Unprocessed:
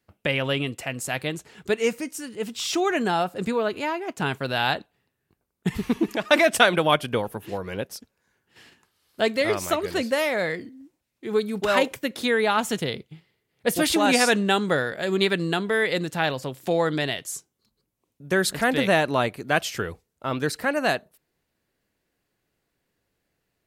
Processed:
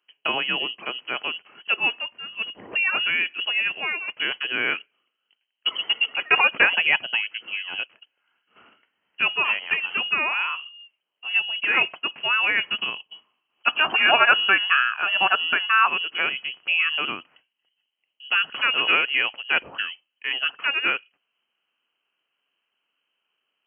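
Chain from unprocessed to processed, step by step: frequency inversion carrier 3.1 kHz; Bessel high-pass 260 Hz, order 2; time-frequency box 13.66–15.88 s, 600–1800 Hz +8 dB

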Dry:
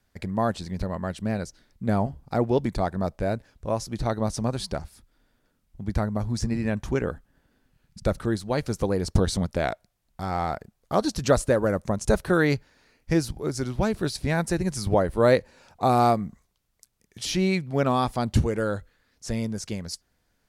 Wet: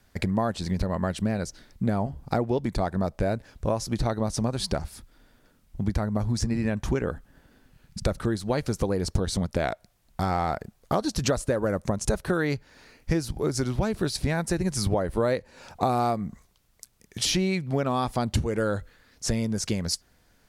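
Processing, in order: compression 6:1, threshold -31 dBFS, peak gain reduction 16 dB; trim +8.5 dB

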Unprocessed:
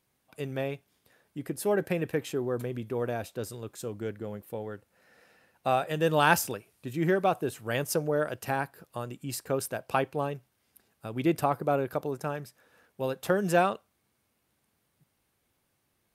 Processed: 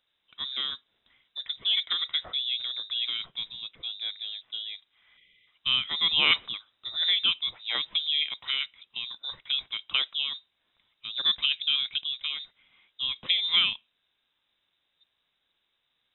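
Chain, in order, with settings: frequency inversion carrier 3.8 kHz; time-frequency box 5.17–5.47 s, 600–1900 Hz -26 dB

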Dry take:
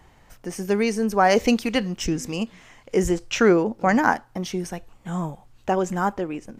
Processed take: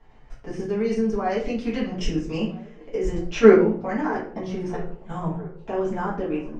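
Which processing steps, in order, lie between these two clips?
level held to a coarse grid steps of 15 dB; distance through air 130 m; on a send: feedback echo behind a band-pass 651 ms, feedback 63%, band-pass 750 Hz, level -19 dB; on the sum: simulated room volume 38 m³, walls mixed, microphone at 1.6 m; trim -5 dB

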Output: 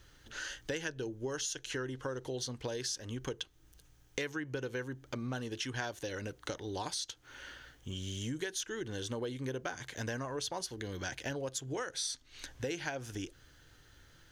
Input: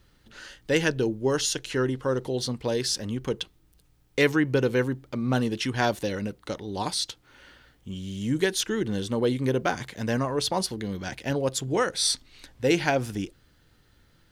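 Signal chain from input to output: graphic EQ with 31 bands 200 Hz -12 dB, 1.6 kHz +6 dB, 3.15 kHz +4 dB, 6.3 kHz +9 dB; compression 6:1, threshold -36 dBFS, peak gain reduction 19 dB

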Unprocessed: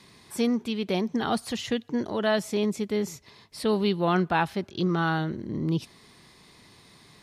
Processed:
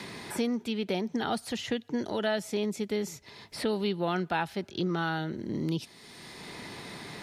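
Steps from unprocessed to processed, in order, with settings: bass shelf 240 Hz -4.5 dB; band-stop 1.1 kHz, Q 7.1; three bands compressed up and down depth 70%; trim -3 dB

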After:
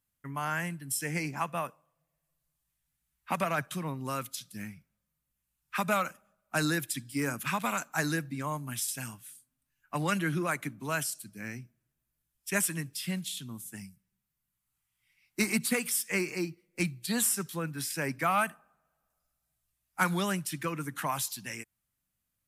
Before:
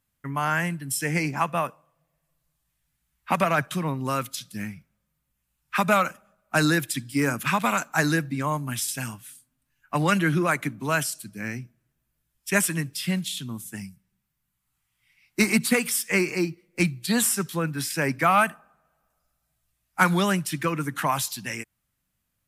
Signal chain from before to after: peaking EQ 12 kHz +4.5 dB 1.7 oct; trim -8 dB

